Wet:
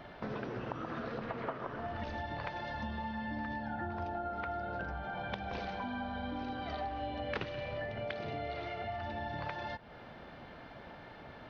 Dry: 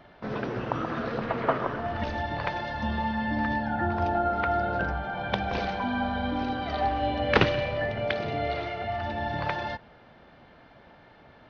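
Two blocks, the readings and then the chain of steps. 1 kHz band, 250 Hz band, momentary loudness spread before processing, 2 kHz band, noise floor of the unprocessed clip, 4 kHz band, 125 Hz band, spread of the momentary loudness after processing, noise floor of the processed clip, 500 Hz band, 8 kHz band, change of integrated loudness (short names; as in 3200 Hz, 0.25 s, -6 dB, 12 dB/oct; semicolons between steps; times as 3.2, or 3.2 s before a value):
-10.5 dB, -10.5 dB, 6 LU, -10.5 dB, -54 dBFS, -11.5 dB, -10.5 dB, 12 LU, -51 dBFS, -11.0 dB, n/a, -11.0 dB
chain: compressor 4:1, threshold -42 dBFS, peak gain reduction 22 dB; gain +3 dB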